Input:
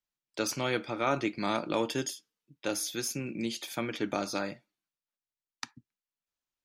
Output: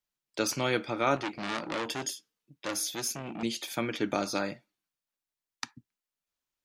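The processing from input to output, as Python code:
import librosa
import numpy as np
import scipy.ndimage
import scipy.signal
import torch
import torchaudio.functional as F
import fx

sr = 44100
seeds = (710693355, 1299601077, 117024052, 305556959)

y = fx.transformer_sat(x, sr, knee_hz=2600.0, at=(1.16, 3.43))
y = y * 10.0 ** (2.0 / 20.0)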